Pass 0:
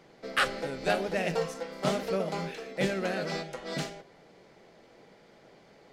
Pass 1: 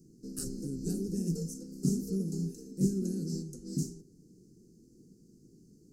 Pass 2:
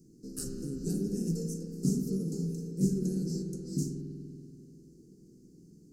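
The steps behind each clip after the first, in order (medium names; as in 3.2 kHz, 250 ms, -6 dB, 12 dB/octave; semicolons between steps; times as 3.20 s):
inverse Chebyshev band-stop 580–3600 Hz, stop band 40 dB; trim +4.5 dB
spring tank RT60 2.7 s, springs 48 ms, chirp 60 ms, DRR 3 dB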